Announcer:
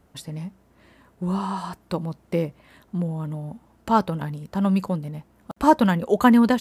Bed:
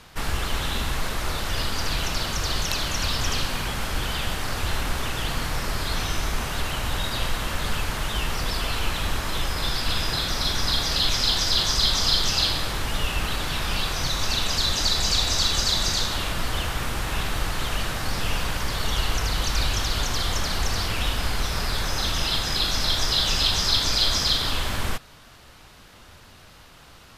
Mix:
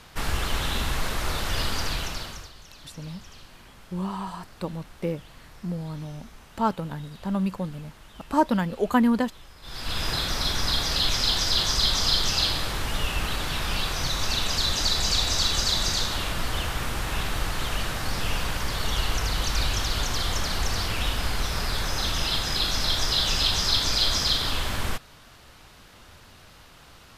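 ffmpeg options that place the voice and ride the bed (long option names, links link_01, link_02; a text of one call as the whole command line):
ffmpeg -i stem1.wav -i stem2.wav -filter_complex "[0:a]adelay=2700,volume=-5dB[link_01];[1:a]volume=20dB,afade=type=out:start_time=1.73:duration=0.78:silence=0.0841395,afade=type=in:start_time=9.62:duration=0.46:silence=0.0944061[link_02];[link_01][link_02]amix=inputs=2:normalize=0" out.wav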